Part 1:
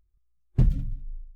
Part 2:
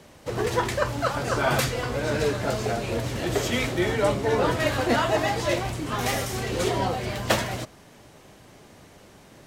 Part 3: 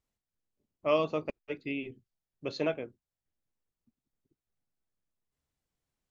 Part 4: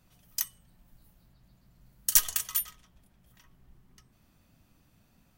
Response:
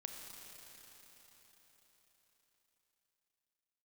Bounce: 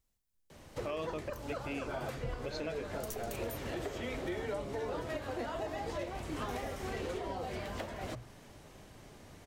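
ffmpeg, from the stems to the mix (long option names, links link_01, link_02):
-filter_complex "[0:a]highpass=46,adelay=1650,volume=-17.5dB[link_01];[1:a]bandreject=frequency=60:width_type=h:width=6,bandreject=frequency=120:width_type=h:width=6,bandreject=frequency=180:width_type=h:width=6,acrossover=split=140|310|770|2900[link_02][link_03][link_04][link_05][link_06];[link_02]acompressor=threshold=-42dB:ratio=4[link_07];[link_03]acompressor=threshold=-43dB:ratio=4[link_08];[link_04]acompressor=threshold=-26dB:ratio=4[link_09];[link_05]acompressor=threshold=-37dB:ratio=4[link_10];[link_06]acompressor=threshold=-47dB:ratio=4[link_11];[link_07][link_08][link_09][link_10][link_11]amix=inputs=5:normalize=0,adelay=500,volume=-5.5dB[link_12];[2:a]highshelf=frequency=5000:gain=8.5,volume=0dB,asplit=2[link_13][link_14];[3:a]adelay=950,volume=-16dB[link_15];[link_14]apad=whole_len=278771[link_16];[link_15][link_16]sidechaincompress=threshold=-37dB:ratio=8:attack=6.8:release=173[link_17];[link_01][link_12][link_13][link_17]amix=inputs=4:normalize=0,lowshelf=frequency=69:gain=11.5,alimiter=level_in=4.5dB:limit=-24dB:level=0:latency=1:release=313,volume=-4.5dB"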